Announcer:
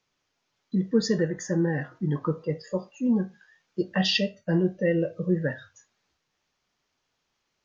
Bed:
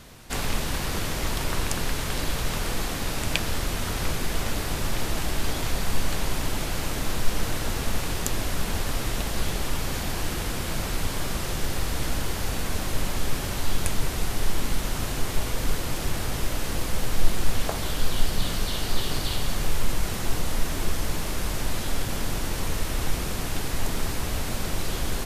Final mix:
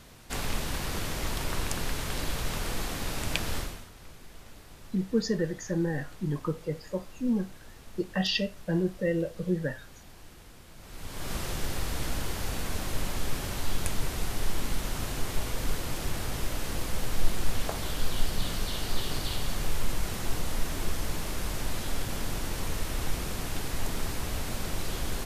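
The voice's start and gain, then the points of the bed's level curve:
4.20 s, −4.0 dB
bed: 0:03.59 −4.5 dB
0:03.90 −22 dB
0:10.76 −22 dB
0:11.33 −4.5 dB

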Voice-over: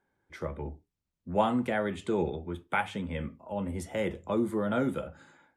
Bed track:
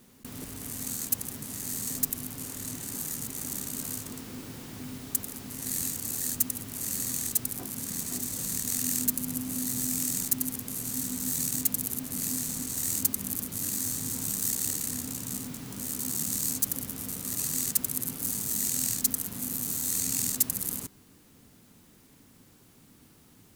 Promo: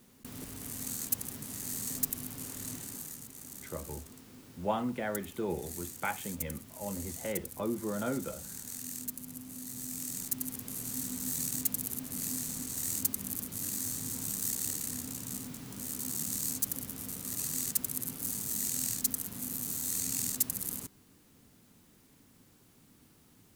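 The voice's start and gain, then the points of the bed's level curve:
3.30 s, −5.5 dB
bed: 0:02.74 −3.5 dB
0:03.27 −12 dB
0:09.61 −12 dB
0:10.70 −4.5 dB

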